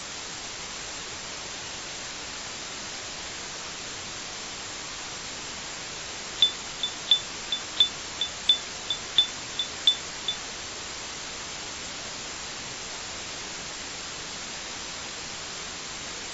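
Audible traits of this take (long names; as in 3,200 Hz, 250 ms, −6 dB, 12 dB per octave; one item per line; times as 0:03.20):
a quantiser's noise floor 6 bits, dither triangular
AAC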